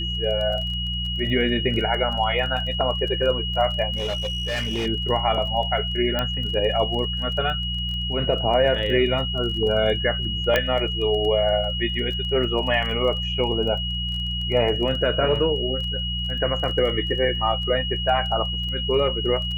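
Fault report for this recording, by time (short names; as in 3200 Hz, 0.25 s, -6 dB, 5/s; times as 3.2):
crackle 16/s -30 dBFS
hum 60 Hz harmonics 3 -29 dBFS
tone 2900 Hz -27 dBFS
3.96–4.87 clipped -22 dBFS
6.19 pop -10 dBFS
10.56 pop -6 dBFS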